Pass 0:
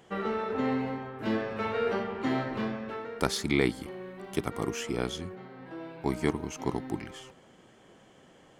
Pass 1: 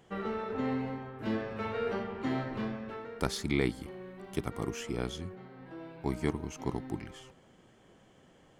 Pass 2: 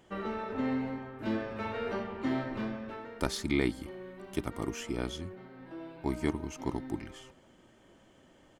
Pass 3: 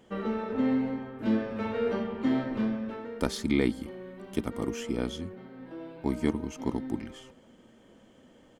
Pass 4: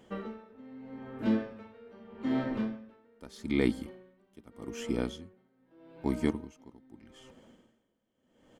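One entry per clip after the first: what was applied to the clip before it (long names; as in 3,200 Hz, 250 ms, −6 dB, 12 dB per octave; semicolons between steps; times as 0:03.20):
low-shelf EQ 130 Hz +8.5 dB; level −5 dB
comb filter 3.3 ms, depth 34%
hollow resonant body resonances 230/470/3,200 Hz, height 9 dB, ringing for 45 ms
tremolo with a sine in dB 0.81 Hz, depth 24 dB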